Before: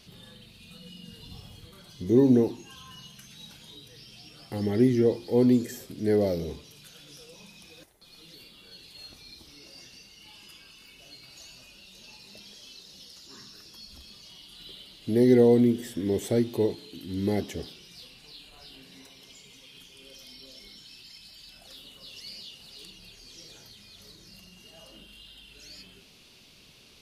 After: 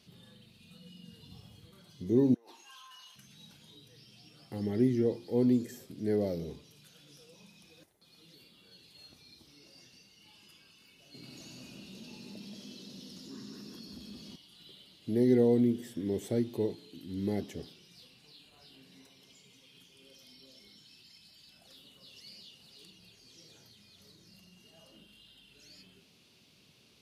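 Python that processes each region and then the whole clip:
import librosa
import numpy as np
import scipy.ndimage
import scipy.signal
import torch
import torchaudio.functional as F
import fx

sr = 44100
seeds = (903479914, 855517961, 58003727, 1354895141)

y = fx.chain(x, sr, fx.highpass_res(hz=1000.0, q=1.6),
    fx.over_compress(threshold_db=-47.0, ratio=-1.0), at=(2.34, 3.16))
y = fx.chain(y, sr, fx.peak_eq(hz=250.0, db=14.5, octaves=1.7),
    fx.echo_split(split_hz=2100.0, low_ms=179, high_ms=94, feedback_pct=52, wet_db=-4.0),
    fx.env_flatten(amount_pct=50), at=(11.14, 14.36))
y = scipy.signal.sosfilt(scipy.signal.butter(2, 110.0, 'highpass', fs=sr, output='sos'), y)
y = fx.low_shelf(y, sr, hz=290.0, db=7.0)
y = F.gain(torch.from_numpy(y), -9.0).numpy()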